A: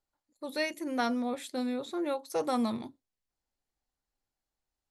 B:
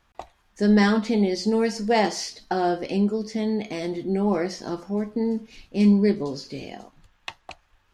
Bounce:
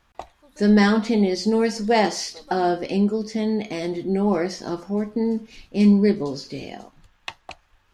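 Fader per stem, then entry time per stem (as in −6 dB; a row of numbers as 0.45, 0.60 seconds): −15.5, +2.0 decibels; 0.00, 0.00 seconds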